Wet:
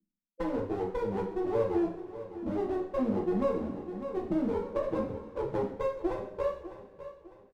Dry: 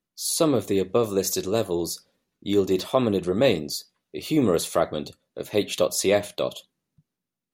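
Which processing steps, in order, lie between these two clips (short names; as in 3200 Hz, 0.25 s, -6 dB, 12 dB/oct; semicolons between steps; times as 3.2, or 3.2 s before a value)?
spectral contrast raised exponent 3.8; steep low-pass 550 Hz 96 dB/oct; comb 3.5 ms, depth 42%; compressor 6:1, threshold -31 dBFS, peak gain reduction 15 dB; one-sided clip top -40 dBFS; feedback echo 0.603 s, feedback 39%, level -13.5 dB; two-slope reverb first 0.5 s, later 2.3 s, from -18 dB, DRR -2 dB; 3.44–5.72 three-band squash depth 40%; gain +2 dB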